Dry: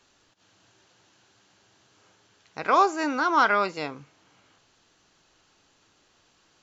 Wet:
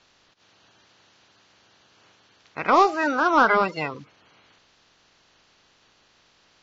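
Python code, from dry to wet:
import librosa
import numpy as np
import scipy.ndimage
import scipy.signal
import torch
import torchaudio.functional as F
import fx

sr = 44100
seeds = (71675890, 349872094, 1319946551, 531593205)

p1 = fx.spec_quant(x, sr, step_db=30)
p2 = 10.0 ** (-17.0 / 20.0) * np.tanh(p1 / 10.0 ** (-17.0 / 20.0))
p3 = p1 + (p2 * librosa.db_to_amplitude(-3.0))
y = scipy.signal.sosfilt(scipy.signal.butter(4, 5600.0, 'lowpass', fs=sr, output='sos'), p3)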